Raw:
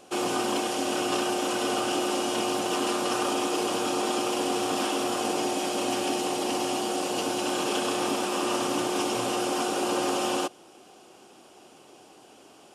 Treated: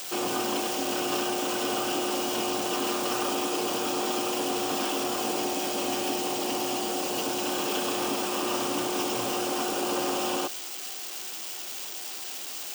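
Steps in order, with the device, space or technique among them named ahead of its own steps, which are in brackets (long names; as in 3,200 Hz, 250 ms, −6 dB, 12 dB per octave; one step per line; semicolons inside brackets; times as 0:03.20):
budget class-D amplifier (gap after every zero crossing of 0.051 ms; spike at every zero crossing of −21 dBFS)
level −2 dB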